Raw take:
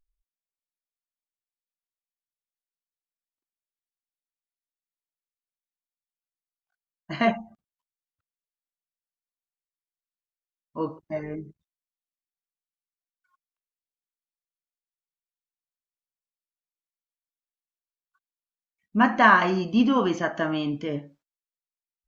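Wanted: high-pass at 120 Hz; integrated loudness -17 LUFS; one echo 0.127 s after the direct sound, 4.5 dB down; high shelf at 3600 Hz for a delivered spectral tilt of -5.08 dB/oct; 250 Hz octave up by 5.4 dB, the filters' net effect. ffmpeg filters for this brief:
-af "highpass=120,equalizer=f=250:t=o:g=6.5,highshelf=f=3.6k:g=-6.5,aecho=1:1:127:0.596,volume=3dB"

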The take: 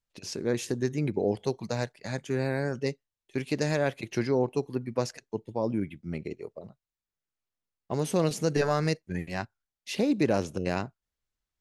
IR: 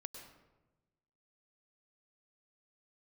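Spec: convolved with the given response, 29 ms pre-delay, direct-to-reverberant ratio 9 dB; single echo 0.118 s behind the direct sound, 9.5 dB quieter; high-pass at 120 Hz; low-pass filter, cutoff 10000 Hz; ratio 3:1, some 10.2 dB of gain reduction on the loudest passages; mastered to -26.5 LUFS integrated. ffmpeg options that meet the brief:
-filter_complex "[0:a]highpass=120,lowpass=10k,acompressor=threshold=-35dB:ratio=3,aecho=1:1:118:0.335,asplit=2[a][b];[1:a]atrim=start_sample=2205,adelay=29[c];[b][c]afir=irnorm=-1:irlink=0,volume=-5dB[d];[a][d]amix=inputs=2:normalize=0,volume=11.5dB"

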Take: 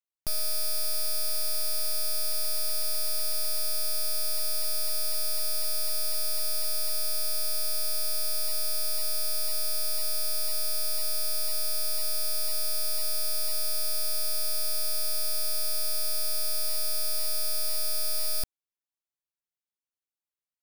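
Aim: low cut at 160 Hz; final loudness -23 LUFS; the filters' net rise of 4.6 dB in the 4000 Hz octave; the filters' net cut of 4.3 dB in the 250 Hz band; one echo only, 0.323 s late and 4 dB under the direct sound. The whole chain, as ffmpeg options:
-af "highpass=160,equalizer=f=250:t=o:g=-3.5,equalizer=f=4k:t=o:g=6,aecho=1:1:323:0.631,volume=1dB"

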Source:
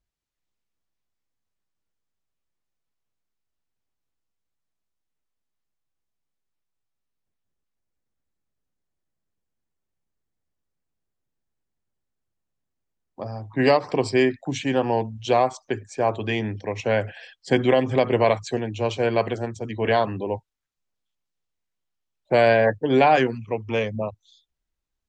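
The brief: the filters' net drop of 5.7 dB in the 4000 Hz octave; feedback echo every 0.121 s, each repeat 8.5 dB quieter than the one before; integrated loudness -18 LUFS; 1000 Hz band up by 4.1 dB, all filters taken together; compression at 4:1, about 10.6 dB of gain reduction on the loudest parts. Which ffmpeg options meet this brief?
-af "equalizer=f=1k:t=o:g=6.5,equalizer=f=4k:t=o:g=-9,acompressor=threshold=-23dB:ratio=4,aecho=1:1:121|242|363|484:0.376|0.143|0.0543|0.0206,volume=10dB"

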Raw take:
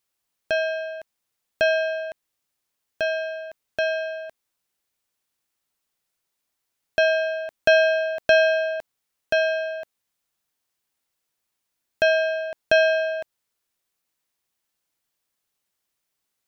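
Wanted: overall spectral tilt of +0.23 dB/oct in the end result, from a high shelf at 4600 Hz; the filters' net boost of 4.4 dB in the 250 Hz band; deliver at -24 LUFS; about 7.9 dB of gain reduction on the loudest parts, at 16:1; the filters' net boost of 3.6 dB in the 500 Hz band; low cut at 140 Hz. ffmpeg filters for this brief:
-af "highpass=140,equalizer=f=250:t=o:g=4.5,equalizer=f=500:t=o:g=5,highshelf=f=4.6k:g=-7.5,acompressor=threshold=-17dB:ratio=16"

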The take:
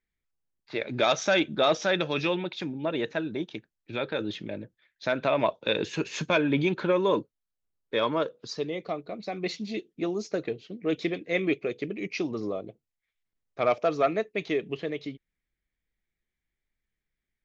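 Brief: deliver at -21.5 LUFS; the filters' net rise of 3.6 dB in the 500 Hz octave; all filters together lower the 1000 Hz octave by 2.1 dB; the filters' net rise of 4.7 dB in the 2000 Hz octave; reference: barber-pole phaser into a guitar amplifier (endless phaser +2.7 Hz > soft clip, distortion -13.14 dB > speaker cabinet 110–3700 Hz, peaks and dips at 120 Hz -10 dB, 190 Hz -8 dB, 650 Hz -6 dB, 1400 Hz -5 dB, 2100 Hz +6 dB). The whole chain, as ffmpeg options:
-filter_complex "[0:a]equalizer=f=500:t=o:g=8,equalizer=f=1k:t=o:g=-3.5,equalizer=f=2k:t=o:g=4,asplit=2[a][b];[b]afreqshift=2.7[c];[a][c]amix=inputs=2:normalize=1,asoftclip=threshold=-19.5dB,highpass=110,equalizer=f=120:t=q:w=4:g=-10,equalizer=f=190:t=q:w=4:g=-8,equalizer=f=650:t=q:w=4:g=-6,equalizer=f=1.4k:t=q:w=4:g=-5,equalizer=f=2.1k:t=q:w=4:g=6,lowpass=f=3.7k:w=0.5412,lowpass=f=3.7k:w=1.3066,volume=10dB"

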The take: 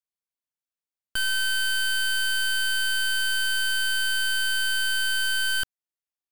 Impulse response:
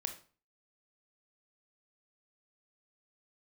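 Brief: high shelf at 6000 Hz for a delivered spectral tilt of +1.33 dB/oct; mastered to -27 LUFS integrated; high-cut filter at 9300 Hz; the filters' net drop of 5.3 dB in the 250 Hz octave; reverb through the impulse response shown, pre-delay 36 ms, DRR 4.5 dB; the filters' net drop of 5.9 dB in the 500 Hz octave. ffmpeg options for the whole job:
-filter_complex "[0:a]lowpass=9.3k,equalizer=f=250:t=o:g=-5.5,equalizer=f=500:t=o:g=-6,highshelf=f=6k:g=7,asplit=2[a][b];[1:a]atrim=start_sample=2205,adelay=36[c];[b][c]afir=irnorm=-1:irlink=0,volume=-4dB[d];[a][d]amix=inputs=2:normalize=0,volume=-5dB"

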